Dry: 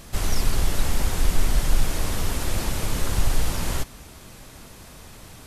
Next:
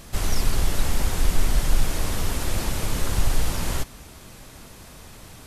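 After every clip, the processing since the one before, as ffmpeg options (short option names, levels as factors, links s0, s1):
-af anull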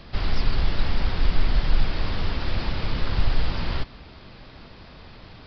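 -filter_complex "[0:a]acrossover=split=260|860[s0][s1][s2];[s1]asoftclip=type=hard:threshold=0.0119[s3];[s0][s3][s2]amix=inputs=3:normalize=0,aresample=11025,aresample=44100"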